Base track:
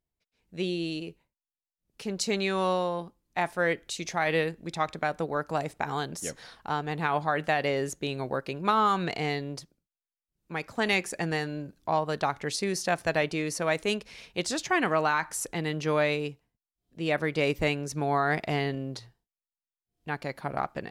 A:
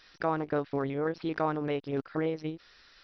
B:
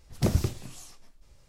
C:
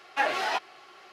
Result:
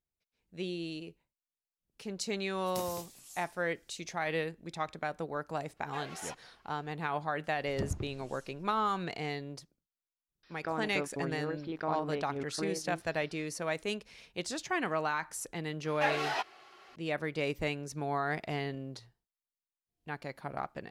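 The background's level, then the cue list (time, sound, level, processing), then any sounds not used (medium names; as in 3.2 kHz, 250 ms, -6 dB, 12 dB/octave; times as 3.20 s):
base track -7 dB
2.53 s: add B -14.5 dB + RIAA curve recording
5.76 s: add C -18 dB, fades 0.02 s
7.56 s: add B -11.5 dB + low-pass that closes with the level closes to 1.4 kHz, closed at -19.5 dBFS
10.43 s: add A -6.5 dB
15.84 s: add C -5 dB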